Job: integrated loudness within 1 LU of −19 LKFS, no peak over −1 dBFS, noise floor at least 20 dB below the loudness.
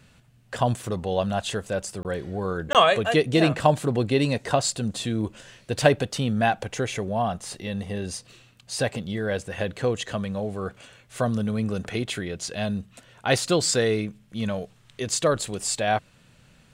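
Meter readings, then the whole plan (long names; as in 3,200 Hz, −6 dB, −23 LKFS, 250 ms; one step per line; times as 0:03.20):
number of dropouts 2; longest dropout 18 ms; integrated loudness −25.5 LKFS; sample peak −3.0 dBFS; target loudness −19.0 LKFS
→ repair the gap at 0:02.03/0:02.73, 18 ms
level +6.5 dB
brickwall limiter −1 dBFS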